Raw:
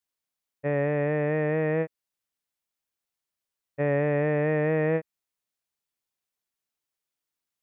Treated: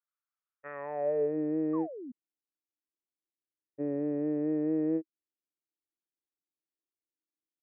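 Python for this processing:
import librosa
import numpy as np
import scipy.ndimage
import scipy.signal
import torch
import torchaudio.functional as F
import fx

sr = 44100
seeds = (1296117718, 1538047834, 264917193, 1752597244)

y = fx.filter_sweep_bandpass(x, sr, from_hz=1300.0, to_hz=320.0, start_s=0.71, end_s=1.38, q=5.9)
y = fx.spec_paint(y, sr, seeds[0], shape='fall', start_s=1.73, length_s=0.39, low_hz=230.0, high_hz=1200.0, level_db=-46.0)
y = y * 10.0 ** (4.0 / 20.0)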